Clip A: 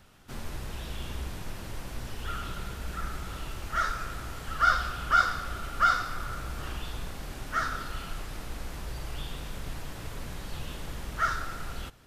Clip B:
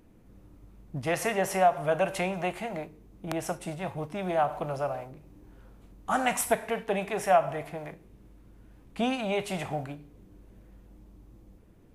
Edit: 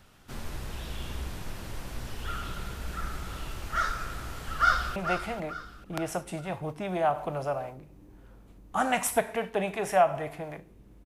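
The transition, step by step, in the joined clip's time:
clip A
0:04.53–0:04.96: delay throw 440 ms, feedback 40%, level −9.5 dB
0:04.96: continue with clip B from 0:02.30

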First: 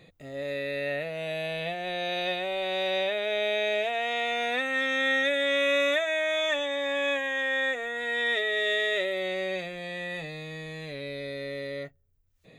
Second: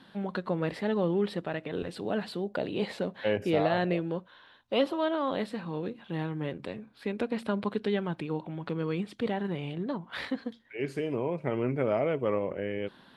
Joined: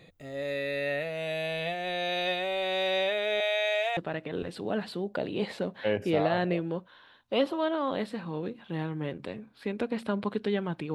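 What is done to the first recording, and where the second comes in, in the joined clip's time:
first
0:03.40–0:03.97: Butterworth high-pass 500 Hz 48 dB per octave
0:03.97: continue with second from 0:01.37

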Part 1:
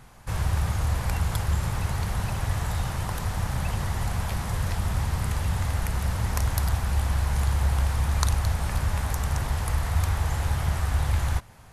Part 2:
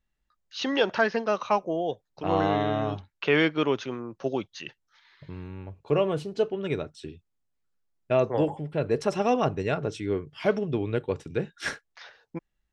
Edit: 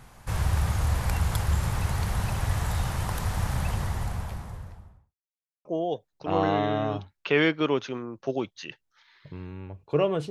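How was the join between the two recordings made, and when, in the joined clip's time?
part 1
0:03.48–0:05.15: fade out and dull
0:05.15–0:05.65: silence
0:05.65: continue with part 2 from 0:01.62

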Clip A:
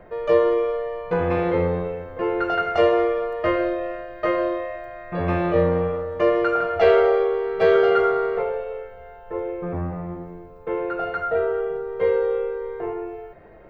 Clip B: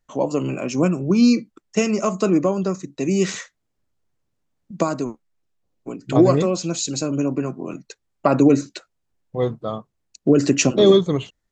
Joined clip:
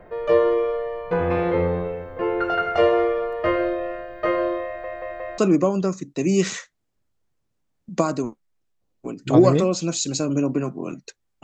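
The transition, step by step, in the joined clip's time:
clip A
0:04.66: stutter in place 0.18 s, 4 plays
0:05.38: continue with clip B from 0:02.20

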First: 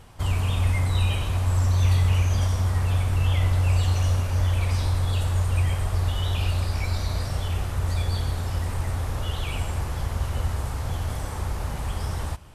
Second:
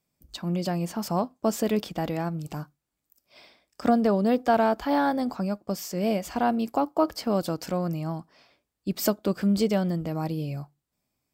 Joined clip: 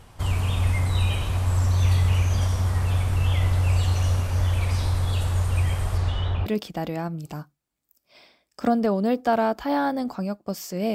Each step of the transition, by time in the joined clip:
first
0:05.97–0:06.46: low-pass filter 9,000 Hz → 1,300 Hz
0:06.46: continue with second from 0:01.67

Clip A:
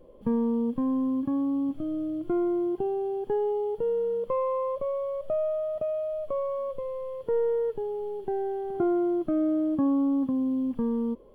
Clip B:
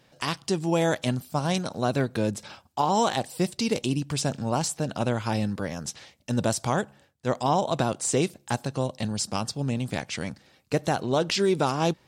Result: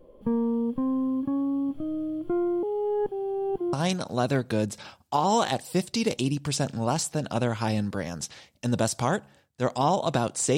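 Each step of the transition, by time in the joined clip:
clip A
0:02.63–0:03.73: reverse
0:03.73: continue with clip B from 0:01.38

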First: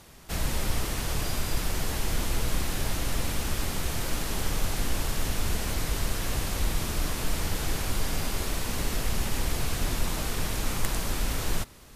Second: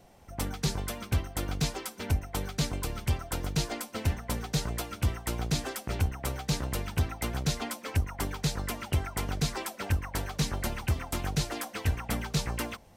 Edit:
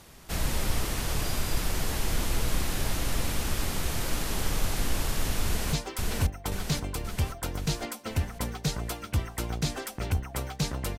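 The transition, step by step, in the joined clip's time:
first
0:05.45–0:05.73: delay throw 530 ms, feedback 60%, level −2 dB
0:05.73: continue with second from 0:01.62

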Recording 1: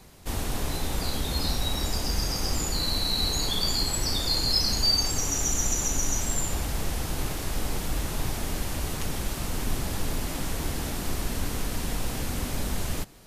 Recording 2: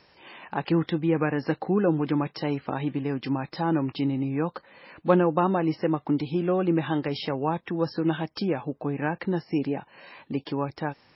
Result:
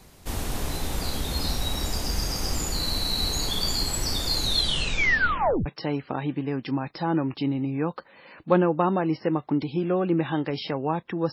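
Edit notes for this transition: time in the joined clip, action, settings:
recording 1
0:04.35: tape stop 1.31 s
0:05.66: continue with recording 2 from 0:02.24

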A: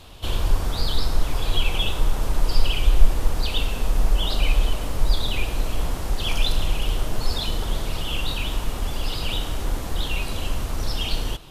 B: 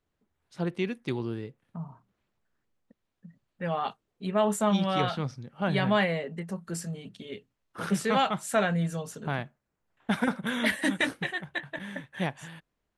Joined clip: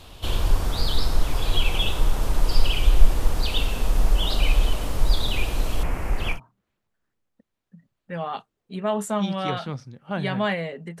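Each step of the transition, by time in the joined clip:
A
0:05.83–0:06.40: high shelf with overshoot 2,900 Hz −7 dB, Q 3
0:06.34: continue with B from 0:01.85, crossfade 0.12 s

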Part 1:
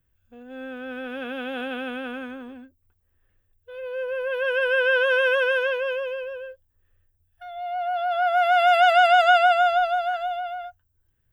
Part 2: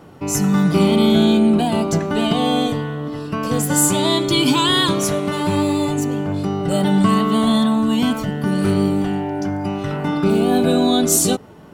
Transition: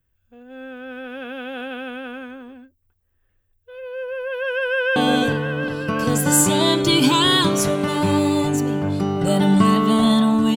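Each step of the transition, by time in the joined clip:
part 1
0:04.60–0:04.96: delay throw 360 ms, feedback 75%, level −5.5 dB
0:04.96: continue with part 2 from 0:02.40

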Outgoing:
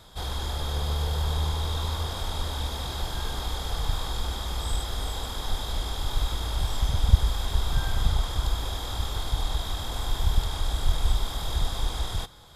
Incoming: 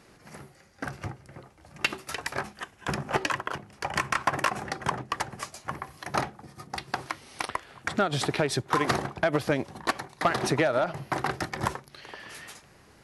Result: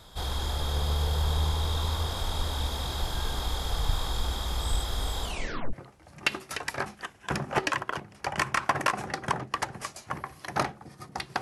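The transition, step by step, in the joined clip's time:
outgoing
0:05.23: tape stop 0.50 s
0:05.73: continue with incoming from 0:01.31

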